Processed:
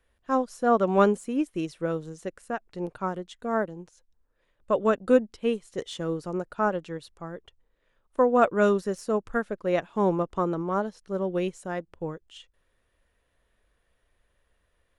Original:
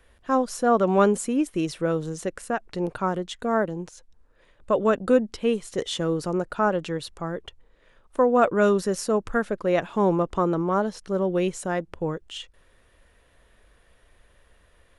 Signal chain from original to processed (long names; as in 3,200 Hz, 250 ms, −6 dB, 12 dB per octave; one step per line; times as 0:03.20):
de-essing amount 55%
expander for the loud parts 1.5 to 1, over −39 dBFS